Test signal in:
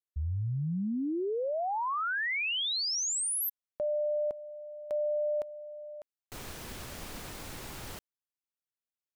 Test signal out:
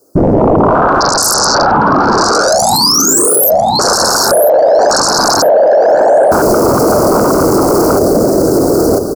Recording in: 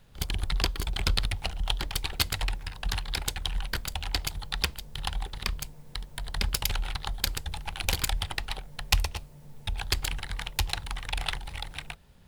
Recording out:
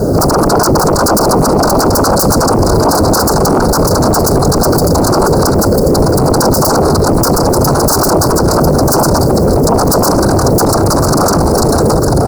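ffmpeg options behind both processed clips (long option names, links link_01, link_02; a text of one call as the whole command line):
ffmpeg -i in.wav -af "firequalizer=gain_entry='entry(150,0);entry(390,14);entry(870,-11)':delay=0.05:min_phase=1,afftfilt=real='hypot(re,im)*cos(2*PI*random(0))':imag='hypot(re,im)*sin(2*PI*random(1))':win_size=512:overlap=0.75,highpass=frequency=49:poles=1,aecho=1:1:995|1990|2985:0.266|0.0718|0.0194,aeval=exprs='0.0631*sin(PI/2*10*val(0)/0.0631)':channel_layout=same,asuperstop=centerf=2600:order=12:qfactor=0.85,lowshelf=frequency=160:gain=-11,bandreject=frequency=60:width_type=h:width=6,bandreject=frequency=120:width_type=h:width=6,bandreject=frequency=180:width_type=h:width=6,bandreject=frequency=240:width_type=h:width=6,bandreject=frequency=300:width_type=h:width=6,bandreject=frequency=360:width_type=h:width=6,bandreject=frequency=420:width_type=h:width=6,bandreject=frequency=480:width_type=h:width=6,bandreject=frequency=540:width_type=h:width=6,acompressor=threshold=-37dB:ratio=6:attack=1.2:release=29:knee=6:detection=rms,alimiter=level_in=34.5dB:limit=-1dB:release=50:level=0:latency=1,volume=-1dB" out.wav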